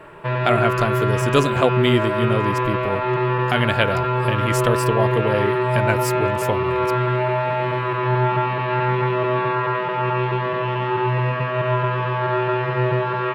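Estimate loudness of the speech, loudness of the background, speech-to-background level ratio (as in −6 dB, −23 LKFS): −23.0 LKFS, −21.0 LKFS, −2.0 dB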